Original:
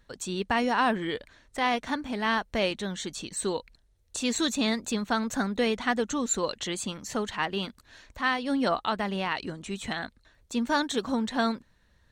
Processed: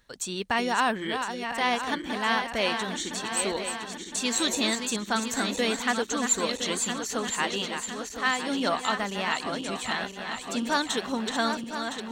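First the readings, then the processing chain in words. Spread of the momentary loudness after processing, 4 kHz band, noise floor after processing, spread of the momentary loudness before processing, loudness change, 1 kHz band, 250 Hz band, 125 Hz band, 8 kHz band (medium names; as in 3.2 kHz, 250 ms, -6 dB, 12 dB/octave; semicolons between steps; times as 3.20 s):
7 LU, +4.0 dB, -41 dBFS, 8 LU, +1.5 dB, +1.5 dB, -1.5 dB, -2.5 dB, +6.0 dB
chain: backward echo that repeats 506 ms, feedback 73%, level -7 dB; tilt EQ +1.5 dB/octave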